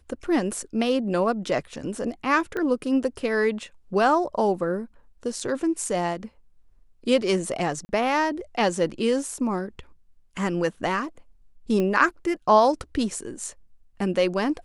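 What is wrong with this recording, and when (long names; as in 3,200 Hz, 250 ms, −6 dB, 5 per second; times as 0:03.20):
0:02.57: click −18 dBFS
0:07.85–0:07.89: drop-out 40 ms
0:11.80: click −15 dBFS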